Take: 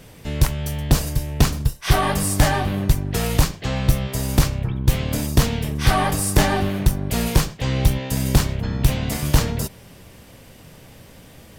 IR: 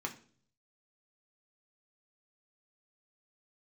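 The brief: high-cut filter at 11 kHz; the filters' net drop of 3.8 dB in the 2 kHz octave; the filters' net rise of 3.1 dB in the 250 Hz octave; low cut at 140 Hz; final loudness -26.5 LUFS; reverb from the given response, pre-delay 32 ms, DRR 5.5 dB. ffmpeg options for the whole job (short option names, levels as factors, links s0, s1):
-filter_complex "[0:a]highpass=140,lowpass=11000,equalizer=f=250:t=o:g=5.5,equalizer=f=2000:t=o:g=-5,asplit=2[s0][s1];[1:a]atrim=start_sample=2205,adelay=32[s2];[s1][s2]afir=irnorm=-1:irlink=0,volume=0.422[s3];[s0][s3]amix=inputs=2:normalize=0,volume=0.562"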